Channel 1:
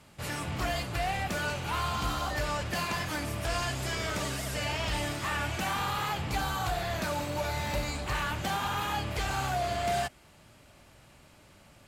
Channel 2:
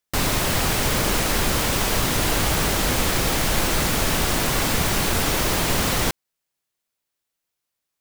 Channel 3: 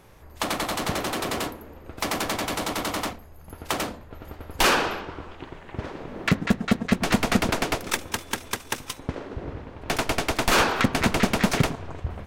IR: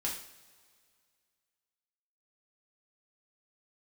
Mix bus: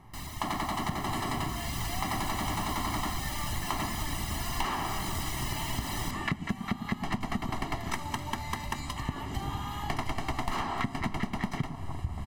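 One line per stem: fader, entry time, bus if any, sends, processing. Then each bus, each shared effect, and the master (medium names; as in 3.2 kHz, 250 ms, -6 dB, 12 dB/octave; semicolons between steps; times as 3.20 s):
+2.0 dB, 0.90 s, no send, compression 10:1, threshold -41 dBFS, peak gain reduction 14.5 dB
1.32 s -22 dB -> 1.80 s -14.5 dB, 0.00 s, no send, reverb removal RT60 0.69 s
-4.5 dB, 0.00 s, send -14.5 dB, treble shelf 2.7 kHz -11.5 dB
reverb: on, pre-delay 3 ms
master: comb 1 ms, depth 93%; compression 12:1, threshold -27 dBFS, peak gain reduction 14.5 dB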